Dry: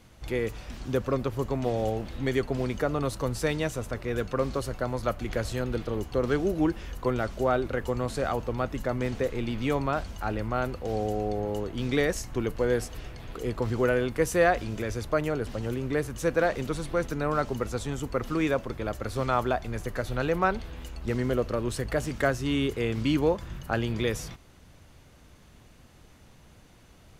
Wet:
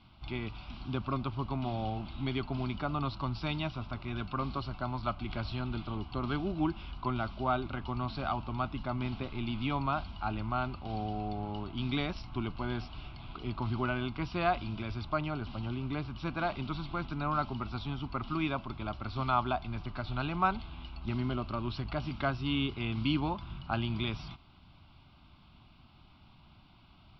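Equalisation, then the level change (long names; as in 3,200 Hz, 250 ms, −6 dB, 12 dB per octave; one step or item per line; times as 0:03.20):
linear-phase brick-wall low-pass 5,800 Hz
low-shelf EQ 91 Hz −6.5 dB
phaser with its sweep stopped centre 1,800 Hz, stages 6
0.0 dB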